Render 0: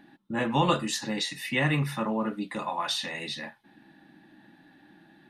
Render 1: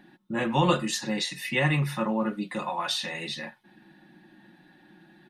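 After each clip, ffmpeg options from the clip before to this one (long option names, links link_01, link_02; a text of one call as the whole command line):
ffmpeg -i in.wav -af "aecho=1:1:5.5:0.52" out.wav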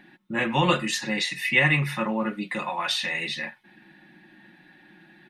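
ffmpeg -i in.wav -af "equalizer=frequency=2200:width=1.5:gain=9.5" out.wav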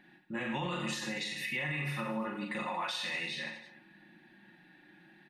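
ffmpeg -i in.wav -af "aecho=1:1:40|90|152.5|230.6|328.3:0.631|0.398|0.251|0.158|0.1,alimiter=limit=-18dB:level=0:latency=1:release=160,volume=-8.5dB" out.wav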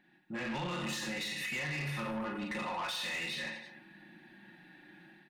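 ffmpeg -i in.wav -af "dynaudnorm=framelen=120:gausssize=5:maxgain=10dB,asoftclip=type=tanh:threshold=-26dB,volume=-7dB" out.wav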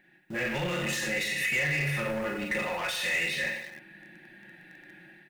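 ffmpeg -i in.wav -filter_complex "[0:a]equalizer=frequency=250:width_type=o:width=1:gain=-9,equalizer=frequency=500:width_type=o:width=1:gain=5,equalizer=frequency=1000:width_type=o:width=1:gain=-11,equalizer=frequency=2000:width_type=o:width=1:gain=5,equalizer=frequency=4000:width_type=o:width=1:gain=-7,asplit=2[link_01][link_02];[link_02]acrusher=bits=7:mix=0:aa=0.000001,volume=-10.5dB[link_03];[link_01][link_03]amix=inputs=2:normalize=0,volume=7dB" out.wav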